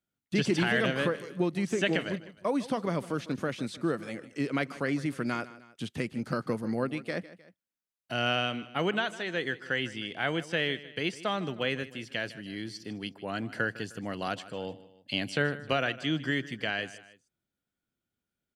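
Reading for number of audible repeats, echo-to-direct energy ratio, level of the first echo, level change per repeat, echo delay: 2, -16.0 dB, -17.0 dB, -6.0 dB, 154 ms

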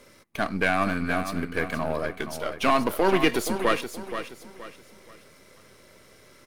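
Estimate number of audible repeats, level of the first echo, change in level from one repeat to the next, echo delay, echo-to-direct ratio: 3, -9.5 dB, -9.5 dB, 474 ms, -9.0 dB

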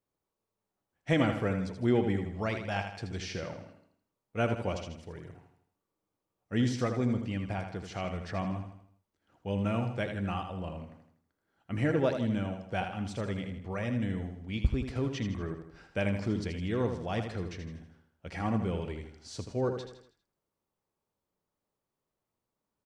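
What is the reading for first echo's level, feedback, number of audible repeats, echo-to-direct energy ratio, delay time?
-7.5 dB, 46%, 5, -6.5 dB, 80 ms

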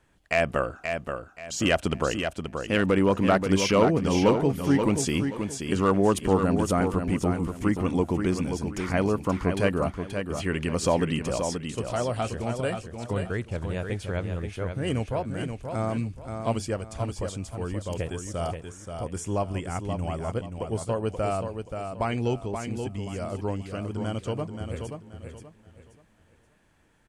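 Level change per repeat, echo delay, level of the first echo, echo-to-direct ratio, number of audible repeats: -10.5 dB, 529 ms, -6.5 dB, -6.0 dB, 3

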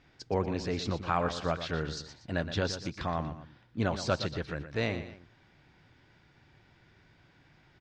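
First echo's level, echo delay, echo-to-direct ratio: -11.0 dB, 119 ms, -10.5 dB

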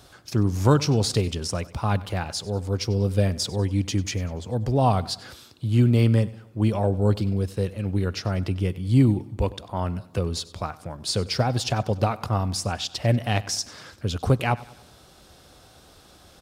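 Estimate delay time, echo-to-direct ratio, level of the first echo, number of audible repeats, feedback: 96 ms, -18.5 dB, -19.5 dB, 3, 46%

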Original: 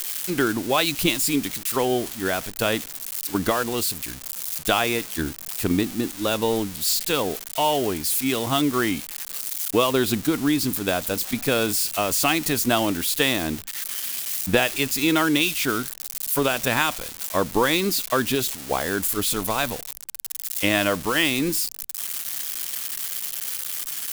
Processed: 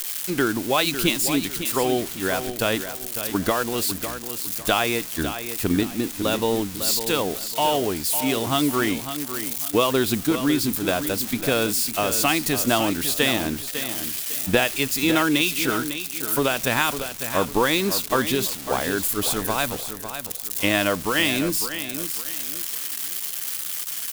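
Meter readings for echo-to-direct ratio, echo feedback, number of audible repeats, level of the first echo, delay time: -9.5 dB, 32%, 3, -10.0 dB, 552 ms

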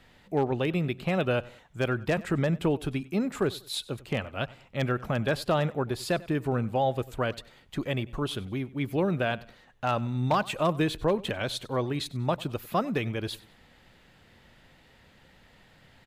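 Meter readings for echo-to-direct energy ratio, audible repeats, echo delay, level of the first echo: -20.5 dB, 2, 96 ms, -21.0 dB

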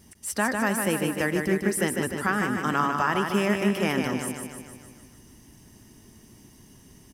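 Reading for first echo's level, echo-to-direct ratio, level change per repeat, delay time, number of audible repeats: -5.0 dB, -3.0 dB, -4.5 dB, 151 ms, 7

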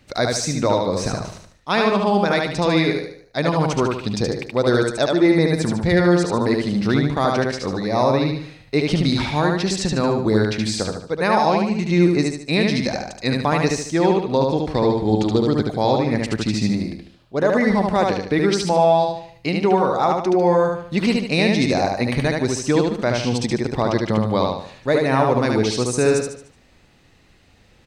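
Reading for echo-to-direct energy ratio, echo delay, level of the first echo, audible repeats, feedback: -2.0 dB, 74 ms, -3.0 dB, 5, 41%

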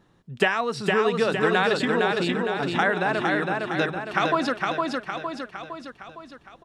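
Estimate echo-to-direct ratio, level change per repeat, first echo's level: -1.5 dB, -5.5 dB, -3.0 dB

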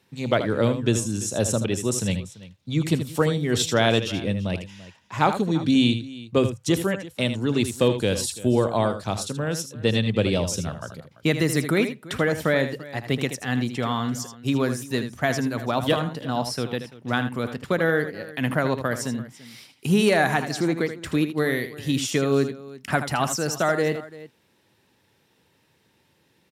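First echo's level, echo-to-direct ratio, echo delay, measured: -10.0 dB, -9.5 dB, 79 ms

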